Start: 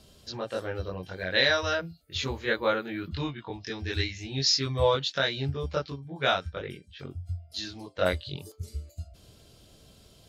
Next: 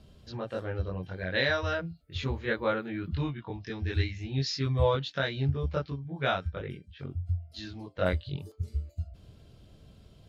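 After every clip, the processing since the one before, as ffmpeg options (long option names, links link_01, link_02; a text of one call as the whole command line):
ffmpeg -i in.wav -af "bass=frequency=250:gain=7,treble=frequency=4000:gain=-11,volume=-3dB" out.wav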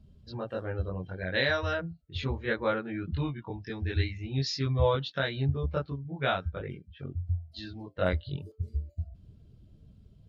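ffmpeg -i in.wav -af "afftdn=noise_reduction=14:noise_floor=-51" out.wav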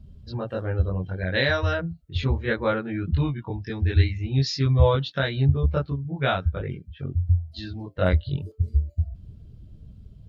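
ffmpeg -i in.wav -af "lowshelf=frequency=140:gain=8.5,volume=4dB" out.wav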